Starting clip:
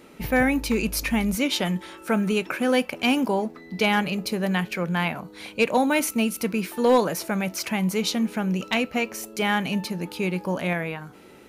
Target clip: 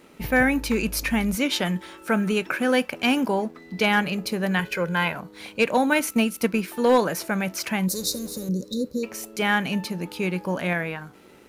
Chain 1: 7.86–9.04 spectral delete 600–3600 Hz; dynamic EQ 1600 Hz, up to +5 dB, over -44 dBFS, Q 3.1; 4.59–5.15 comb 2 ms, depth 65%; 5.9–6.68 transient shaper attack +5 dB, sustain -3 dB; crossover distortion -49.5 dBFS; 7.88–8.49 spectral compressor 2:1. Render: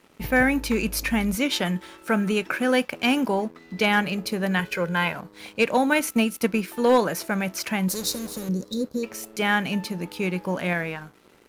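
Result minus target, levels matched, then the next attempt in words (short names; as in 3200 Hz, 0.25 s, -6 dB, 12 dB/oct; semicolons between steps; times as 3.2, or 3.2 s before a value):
crossover distortion: distortion +9 dB
7.86–9.04 spectral delete 600–3600 Hz; dynamic EQ 1600 Hz, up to +5 dB, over -44 dBFS, Q 3.1; 4.59–5.15 comb 2 ms, depth 65%; 5.9–6.68 transient shaper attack +5 dB, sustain -3 dB; crossover distortion -59 dBFS; 7.88–8.49 spectral compressor 2:1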